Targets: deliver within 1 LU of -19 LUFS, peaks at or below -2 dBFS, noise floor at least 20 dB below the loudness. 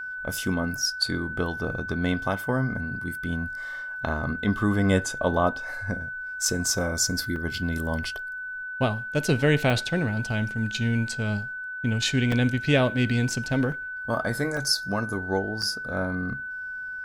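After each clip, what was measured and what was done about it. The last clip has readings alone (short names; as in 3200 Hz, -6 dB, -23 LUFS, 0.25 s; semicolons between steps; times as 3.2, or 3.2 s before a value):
dropouts 6; longest dropout 2.7 ms; steady tone 1500 Hz; tone level -32 dBFS; loudness -26.5 LUFS; peak -8.5 dBFS; loudness target -19.0 LUFS
-> interpolate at 7.36/9.7/12.32/13.72/14.57/15.62, 2.7 ms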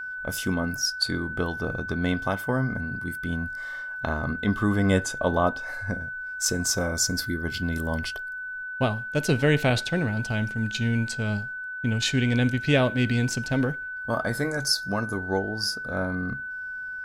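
dropouts 0; steady tone 1500 Hz; tone level -32 dBFS
-> notch 1500 Hz, Q 30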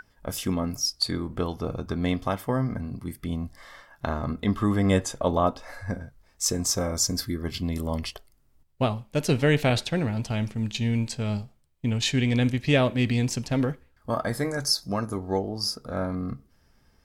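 steady tone none; loudness -27.0 LUFS; peak -9.0 dBFS; loudness target -19.0 LUFS
-> gain +8 dB; limiter -2 dBFS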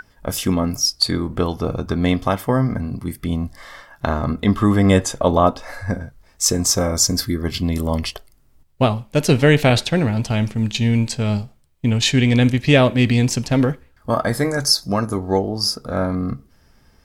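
loudness -19.0 LUFS; peak -2.0 dBFS; noise floor -55 dBFS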